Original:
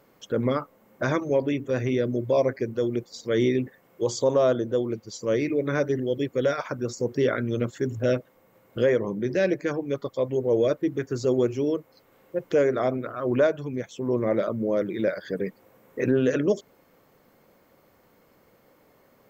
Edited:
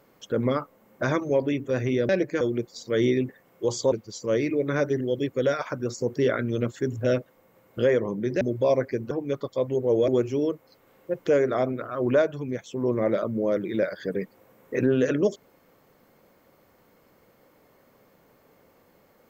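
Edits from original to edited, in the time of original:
2.09–2.79 s: swap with 9.40–9.72 s
4.30–4.91 s: delete
10.69–11.33 s: delete

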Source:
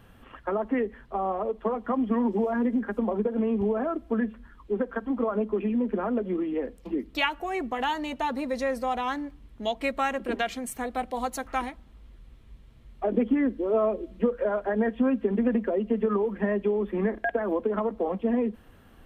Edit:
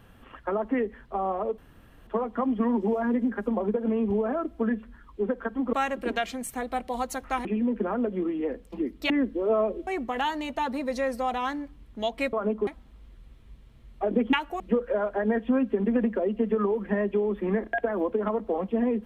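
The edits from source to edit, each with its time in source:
1.58 s: insert room tone 0.49 s
5.24–5.58 s: swap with 9.96–11.68 s
7.23–7.50 s: swap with 13.34–14.11 s

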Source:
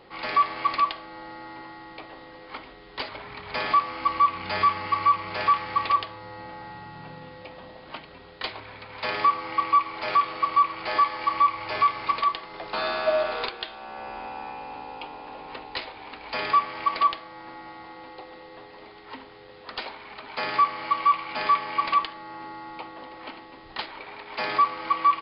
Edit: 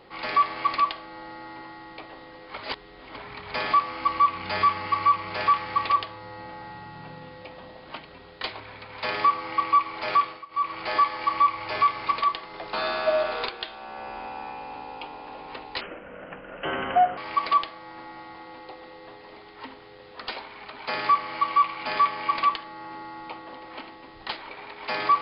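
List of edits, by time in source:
2.56–3.16 s: reverse
10.20–10.74 s: dip -21 dB, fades 0.25 s
15.81–16.67 s: speed 63%

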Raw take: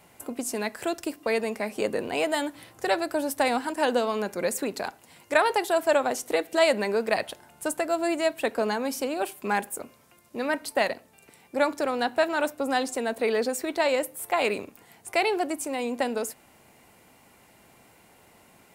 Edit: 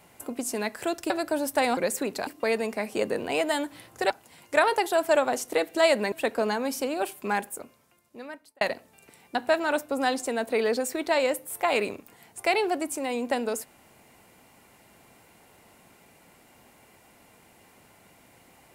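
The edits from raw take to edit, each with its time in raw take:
1.10–2.93 s: move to 4.88 s
3.60–4.38 s: delete
6.90–8.32 s: delete
9.35–10.81 s: fade out
11.55–12.04 s: delete

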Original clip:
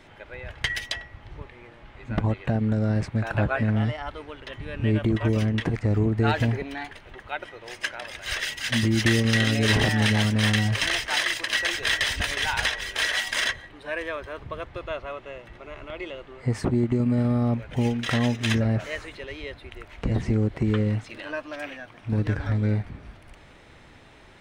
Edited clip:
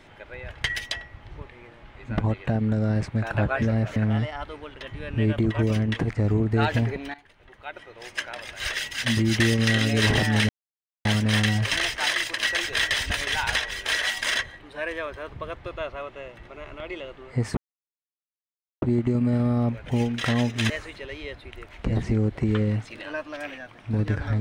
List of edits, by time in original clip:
6.80–7.96 s: fade in, from -17.5 dB
10.15 s: insert silence 0.56 s
16.67 s: insert silence 1.25 s
18.55–18.89 s: move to 3.62 s

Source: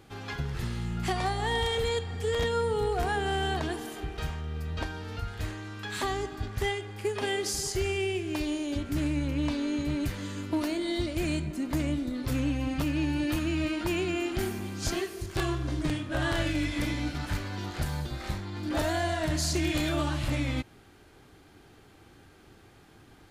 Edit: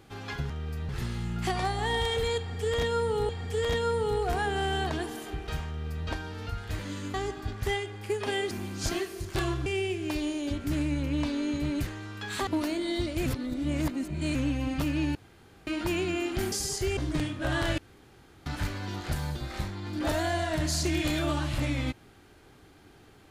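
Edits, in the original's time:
1.99–2.90 s: loop, 2 plays
4.38–4.77 s: copy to 0.50 s
5.49–6.09 s: swap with 10.12–10.47 s
7.46–7.91 s: swap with 14.52–15.67 s
11.26–12.35 s: reverse
13.15–13.67 s: room tone
16.48–17.16 s: room tone

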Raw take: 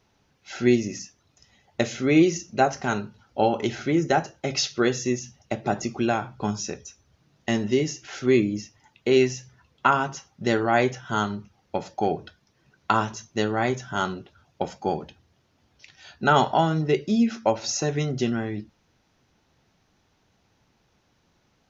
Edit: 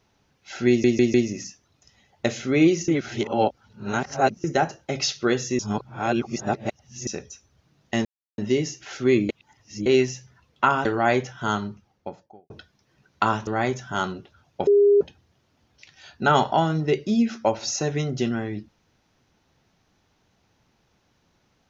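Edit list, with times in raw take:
0.69 s: stutter 0.15 s, 4 plays
2.43–3.99 s: reverse
5.14–6.62 s: reverse
7.60 s: insert silence 0.33 s
8.51–9.08 s: reverse
10.07–10.53 s: delete
11.30–12.18 s: studio fade out
13.15–13.48 s: delete
14.68–15.02 s: bleep 406 Hz -12.5 dBFS

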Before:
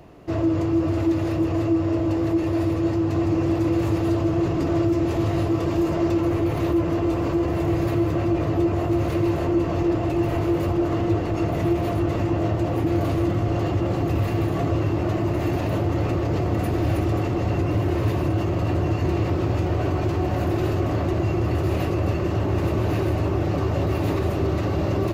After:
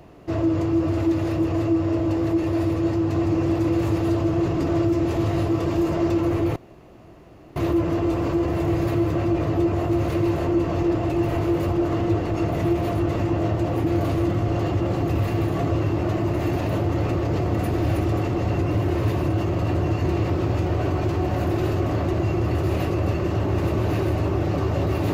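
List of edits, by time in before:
6.56 s: insert room tone 1.00 s

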